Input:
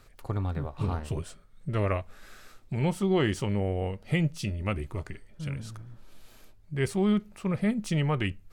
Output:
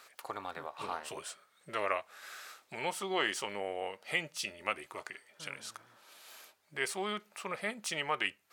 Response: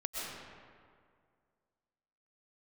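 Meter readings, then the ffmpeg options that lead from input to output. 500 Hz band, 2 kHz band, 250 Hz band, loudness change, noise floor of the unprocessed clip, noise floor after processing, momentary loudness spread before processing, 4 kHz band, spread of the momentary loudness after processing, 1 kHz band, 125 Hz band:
-7.0 dB, +2.0 dB, -17.5 dB, -7.5 dB, -54 dBFS, -70 dBFS, 13 LU, +2.0 dB, 15 LU, +0.5 dB, -26.5 dB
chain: -filter_complex "[0:a]highpass=760,asplit=2[a][b];[b]acompressor=threshold=-50dB:ratio=6,volume=-2.5dB[c];[a][c]amix=inputs=2:normalize=0,volume=1dB"

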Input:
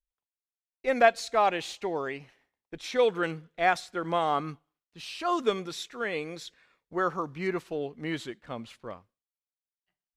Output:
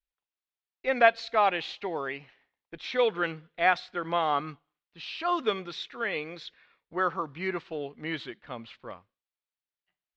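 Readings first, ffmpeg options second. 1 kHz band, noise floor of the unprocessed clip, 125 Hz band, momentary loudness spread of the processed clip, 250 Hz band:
+0.5 dB, under -85 dBFS, -3.0 dB, 17 LU, -2.5 dB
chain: -af "lowpass=f=4.1k:w=0.5412,lowpass=f=4.1k:w=1.3066,tiltshelf=f=800:g=-3.5"

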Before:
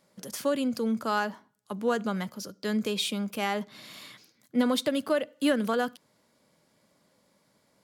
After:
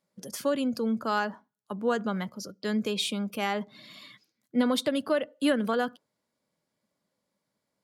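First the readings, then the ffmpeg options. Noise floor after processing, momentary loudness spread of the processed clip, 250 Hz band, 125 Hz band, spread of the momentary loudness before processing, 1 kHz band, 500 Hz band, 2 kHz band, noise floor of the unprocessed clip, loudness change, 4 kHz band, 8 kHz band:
-83 dBFS, 13 LU, 0.0 dB, 0.0 dB, 14 LU, 0.0 dB, 0.0 dB, 0.0 dB, -69 dBFS, 0.0 dB, 0.0 dB, -1.0 dB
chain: -af "afftdn=nr=14:nf=-49"

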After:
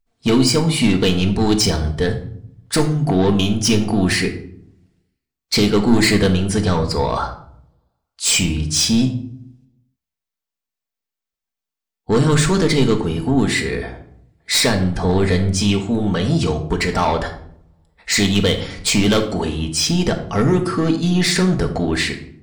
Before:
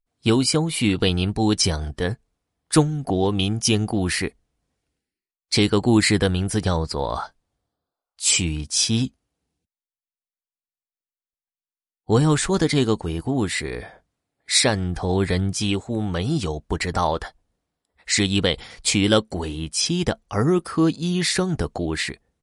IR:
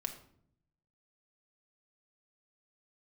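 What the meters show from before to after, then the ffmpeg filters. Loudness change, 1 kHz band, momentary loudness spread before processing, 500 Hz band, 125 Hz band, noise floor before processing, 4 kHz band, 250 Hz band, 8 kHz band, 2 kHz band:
+4.0 dB, +4.0 dB, 9 LU, +4.5 dB, +4.5 dB, under -85 dBFS, +3.5 dB, +5.0 dB, +2.5 dB, +4.5 dB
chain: -filter_complex "[0:a]asoftclip=type=tanh:threshold=-17dB,equalizer=f=10k:w=2.2:g=-5.5[a];[1:a]atrim=start_sample=2205[b];[a][b]afir=irnorm=-1:irlink=0,volume=7.5dB"

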